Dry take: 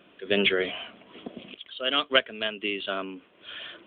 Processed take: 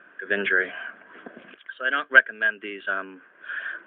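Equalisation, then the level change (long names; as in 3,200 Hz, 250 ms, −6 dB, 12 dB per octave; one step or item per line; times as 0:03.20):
low-shelf EQ 180 Hz −12 dB
dynamic equaliser 1,200 Hz, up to −5 dB, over −40 dBFS, Q 0.77
low-pass with resonance 1,600 Hz, resonance Q 12
−1.0 dB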